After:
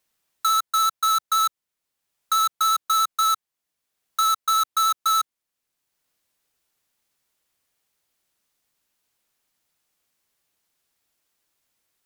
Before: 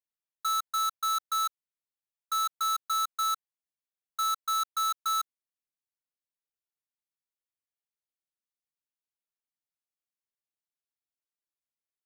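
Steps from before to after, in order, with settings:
pitch vibrato 14 Hz 20 cents
multiband upward and downward compressor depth 40%
level +8 dB

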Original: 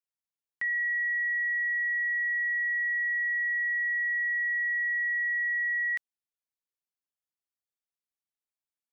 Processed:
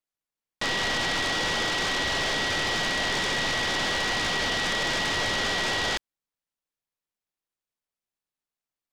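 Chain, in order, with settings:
gain on one half-wave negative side −3 dB
short delay modulated by noise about 1,300 Hz, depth 0.1 ms
level +3.5 dB

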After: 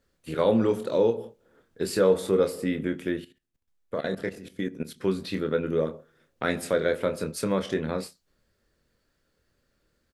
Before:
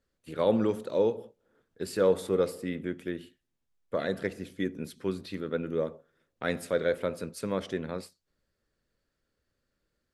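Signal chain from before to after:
in parallel at +2 dB: downward compressor 16 to 1, threshold −32 dBFS, peak gain reduction 14.5 dB
on the sum: double-tracking delay 26 ms −7 dB
0:03.20–0:05.01: output level in coarse steps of 14 dB

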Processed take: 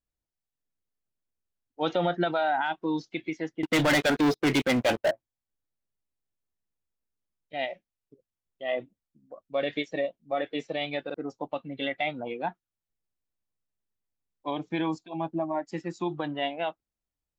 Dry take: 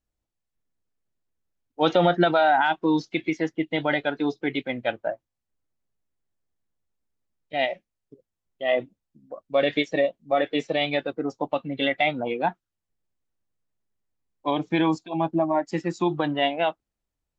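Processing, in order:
0:03.63–0:05.11: leveller curve on the samples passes 5
buffer that repeats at 0:00.51/0:01.43/0:11.05, samples 2,048, times 1
level −7 dB

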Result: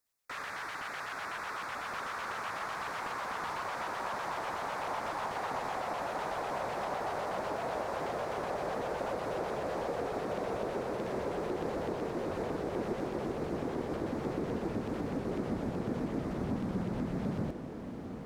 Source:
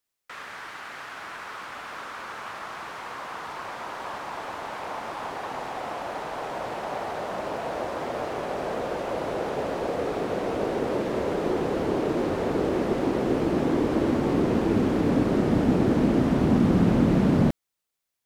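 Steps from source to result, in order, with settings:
downward compressor 6 to 1, threshold −32 dBFS, peak gain reduction 15.5 dB
auto-filter notch square 8 Hz 290–3,000 Hz
feedback delay with all-pass diffusion 1,783 ms, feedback 47%, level −8 dB

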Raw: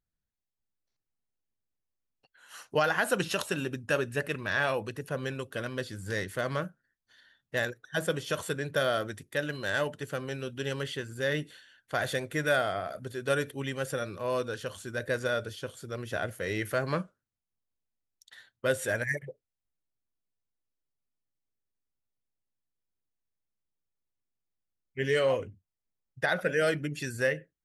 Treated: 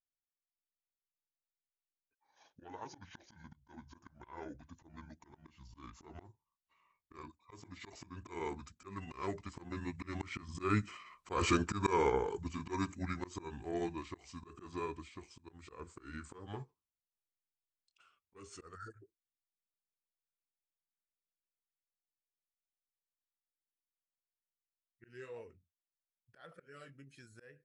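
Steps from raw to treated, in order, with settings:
pitch glide at a constant tempo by −12 semitones ending unshifted
source passing by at 0:11.41, 19 m/s, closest 13 metres
volume swells 168 ms
level +5 dB

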